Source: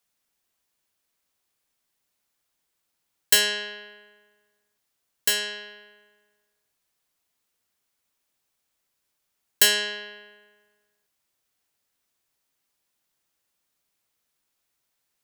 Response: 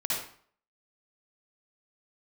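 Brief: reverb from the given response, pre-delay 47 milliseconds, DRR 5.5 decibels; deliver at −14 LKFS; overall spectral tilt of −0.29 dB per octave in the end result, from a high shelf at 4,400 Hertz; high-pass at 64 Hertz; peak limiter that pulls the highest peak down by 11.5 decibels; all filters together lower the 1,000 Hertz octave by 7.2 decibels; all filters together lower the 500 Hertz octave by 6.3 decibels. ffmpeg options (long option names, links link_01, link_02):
-filter_complex "[0:a]highpass=64,equalizer=frequency=500:width_type=o:gain=-6.5,equalizer=frequency=1000:width_type=o:gain=-7,highshelf=frequency=4400:gain=-8.5,alimiter=limit=-21.5dB:level=0:latency=1,asplit=2[link_01][link_02];[1:a]atrim=start_sample=2205,adelay=47[link_03];[link_02][link_03]afir=irnorm=-1:irlink=0,volume=-12.5dB[link_04];[link_01][link_04]amix=inputs=2:normalize=0,volume=18.5dB"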